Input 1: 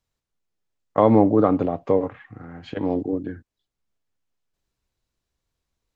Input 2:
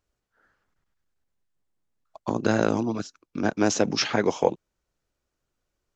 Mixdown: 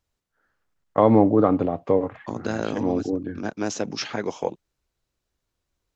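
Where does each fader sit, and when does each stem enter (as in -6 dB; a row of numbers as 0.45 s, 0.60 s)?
-0.5 dB, -5.0 dB; 0.00 s, 0.00 s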